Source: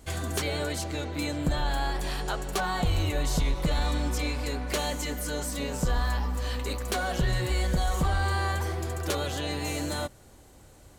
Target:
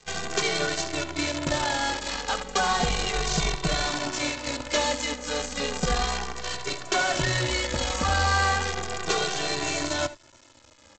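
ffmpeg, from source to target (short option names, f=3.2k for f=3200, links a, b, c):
-filter_complex "[0:a]lowshelf=f=230:g=-11,aecho=1:1:73:0.316,aresample=16000,acrusher=bits=6:dc=4:mix=0:aa=0.000001,aresample=44100,asplit=2[a][b];[b]adelay=2.1,afreqshift=-0.34[c];[a][c]amix=inputs=2:normalize=1,volume=8.5dB"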